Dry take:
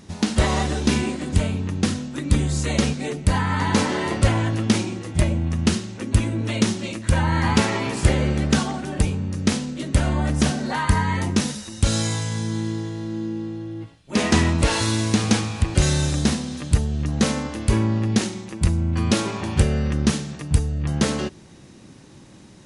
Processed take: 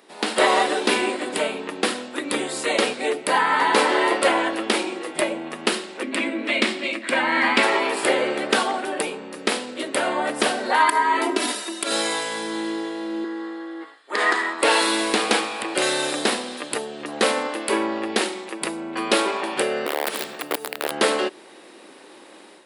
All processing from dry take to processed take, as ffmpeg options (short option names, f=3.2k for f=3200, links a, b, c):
-filter_complex "[0:a]asettb=1/sr,asplit=3[a][b][c];[a]atrim=end=6.034[d];[b]atrim=start=6.03:end=7.63,asetpts=PTS-STARTPTS,afade=t=in:d=0.004:c=qsin,afade=t=out:st=1.596:d=0.004:c=qsin,adynamicsmooth=sensitivity=7.5:basefreq=6.7k,highpass=200,equalizer=f=250:t=q:w=4:g=9,equalizer=f=440:t=q:w=4:g=-8,equalizer=f=890:t=q:w=4:g=-7,equalizer=f=1.4k:t=q:w=4:g=-3,equalizer=f=2.2k:t=q:w=4:g=6,equalizer=f=6.2k:t=q:w=4:g=-5,lowpass=f=9.3k:w=0.5412,lowpass=f=9.3k:w=1.3066[e];[c]atrim=start=7.626[f];[d][e]acrossfade=d=0.004:c1=hsin:c2=qsin[g];[g][f]acrossfade=d=0.004:c1=qsin:c2=hsin,asettb=1/sr,asplit=3[h][i][j];[h]atrim=end=10.804[k];[i]atrim=start=10.8:end=11.91,asetpts=PTS-STARTPTS,afade=t=in:d=0.004:c=qsin,afade=t=out:st=1.106:d=0.004:c=qsin,acompressor=threshold=-21dB:ratio=10:attack=3.2:release=140:knee=1:detection=peak,lowshelf=f=180:t=q:w=1.5:g=-9.5,aecho=1:1:3:0.96,atrim=end_sample=48951[l];[j]atrim=start=11.906[m];[k][l]acrossfade=d=0.004:c1=hsin:c2=qsin[n];[n][m]acrossfade=d=0.004:c1=qsin:c2=hsin,asettb=1/sr,asplit=3[o][p][q];[o]atrim=end=13.244[r];[p]atrim=start=13.24:end=14.63,asetpts=PTS-STARTPTS,afade=t=in:d=0.004:c=qsin,afade=t=out:st=1.386:d=0.004:c=qsin,bandreject=f=5.8k:w=9.9,acompressor=threshold=-21dB:ratio=12:attack=3.2:release=140:knee=1:detection=peak,highpass=330,equalizer=f=580:t=q:w=4:g=-6,equalizer=f=1.2k:t=q:w=4:g=7,equalizer=f=1.8k:t=q:w=4:g=9,equalizer=f=2.6k:t=q:w=4:g=-9,lowpass=f=9k:w=0.5412,lowpass=f=9k:w=1.3066[s];[q]atrim=start=14.626[t];[r][s]acrossfade=d=0.004:c1=hsin:c2=qsin[u];[u][t]acrossfade=d=0.004:c1=qsin:c2=hsin,asettb=1/sr,asplit=3[v][w][x];[v]atrim=end=19.864[y];[w]atrim=start=19.86:end=20.91,asetpts=PTS-STARTPTS,afade=t=in:d=0.004:c=qsin,afade=t=out:st=1.046:d=0.004:c=qsin,acompressor=threshold=-24dB:ratio=16:attack=3.2:release=140:knee=1:detection=peak,acrusher=bits=8:mode=log:mix=0:aa=0.000001,aeval=exprs='(mod(12.6*val(0)+1,2)-1)/12.6':c=same[z];[x]atrim=start=20.906[aa];[y][z]acrossfade=d=0.004:c1=hsin:c2=qsin[ab];[ab][aa]acrossfade=d=0.004:c1=qsin:c2=hsin,highpass=f=370:w=0.5412,highpass=f=370:w=1.3066,equalizer=f=6.2k:t=o:w=0.56:g=-14,dynaudnorm=f=140:g=3:m=8dB"